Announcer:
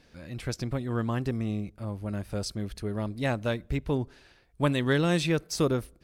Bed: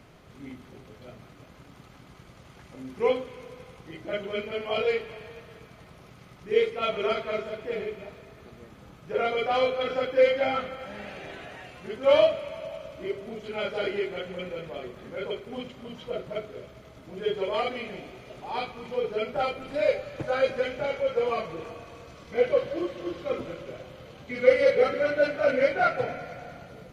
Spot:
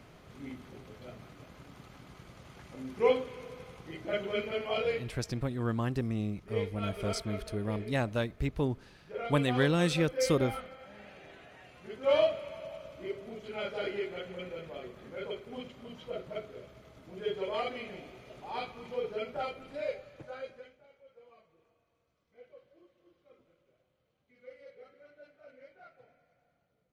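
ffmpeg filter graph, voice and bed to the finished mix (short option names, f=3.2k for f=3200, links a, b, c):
-filter_complex "[0:a]adelay=4700,volume=-2.5dB[a];[1:a]volume=4dB,afade=t=out:st=4.5:d=0.67:silence=0.316228,afade=t=in:st=11.51:d=0.71:silence=0.530884,afade=t=out:st=18.97:d=1.83:silence=0.0501187[b];[a][b]amix=inputs=2:normalize=0"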